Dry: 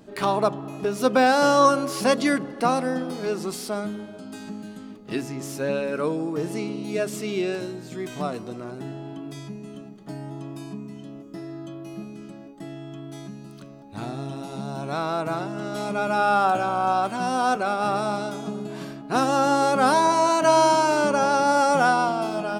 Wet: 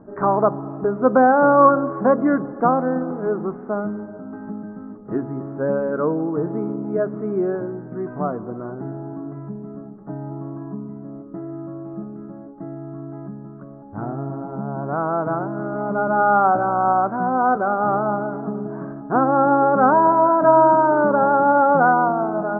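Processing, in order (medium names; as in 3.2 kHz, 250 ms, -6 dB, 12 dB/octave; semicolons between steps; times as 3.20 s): steep low-pass 1.5 kHz 48 dB/octave; trim +4.5 dB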